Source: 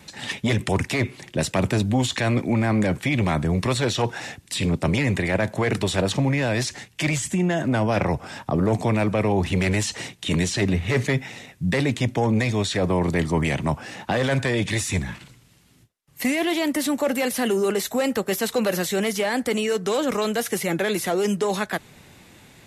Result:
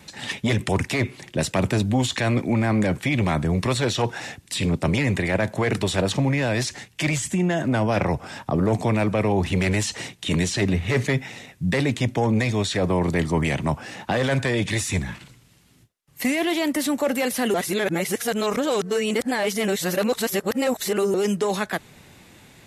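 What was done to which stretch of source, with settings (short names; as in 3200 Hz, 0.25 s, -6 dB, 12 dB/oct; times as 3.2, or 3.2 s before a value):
17.54–21.14 reverse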